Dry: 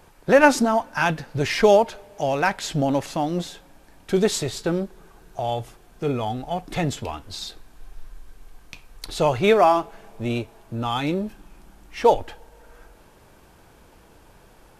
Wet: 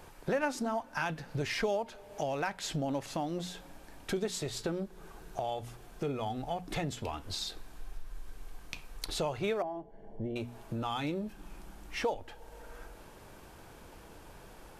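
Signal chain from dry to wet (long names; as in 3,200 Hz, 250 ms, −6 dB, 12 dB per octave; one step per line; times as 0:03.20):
mains-hum notches 60/120/180/240 Hz
downward compressor 3 to 1, threshold −35 dBFS, peak gain reduction 18.5 dB
0:09.62–0:10.36: moving average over 35 samples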